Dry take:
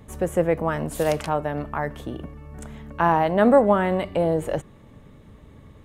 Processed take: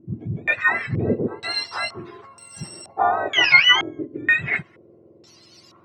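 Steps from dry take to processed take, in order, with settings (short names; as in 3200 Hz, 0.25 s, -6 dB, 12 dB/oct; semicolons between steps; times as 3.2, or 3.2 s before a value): spectrum mirrored in octaves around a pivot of 1100 Hz; small resonant body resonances 240/340 Hz, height 11 dB, ringing for 60 ms; stepped low-pass 2.1 Hz 300–7600 Hz; gain +1 dB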